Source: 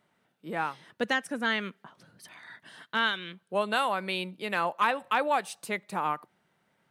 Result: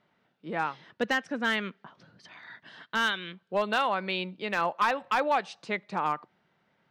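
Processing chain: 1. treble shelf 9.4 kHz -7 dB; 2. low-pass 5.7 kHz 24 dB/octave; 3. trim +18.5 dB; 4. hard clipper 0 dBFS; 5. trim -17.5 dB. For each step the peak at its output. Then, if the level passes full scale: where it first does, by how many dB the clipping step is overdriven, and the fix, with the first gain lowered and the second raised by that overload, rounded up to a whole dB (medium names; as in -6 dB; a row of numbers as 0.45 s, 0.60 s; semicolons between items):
-13.5 dBFS, -13.0 dBFS, +5.5 dBFS, 0.0 dBFS, -17.5 dBFS; step 3, 5.5 dB; step 3 +12.5 dB, step 5 -11.5 dB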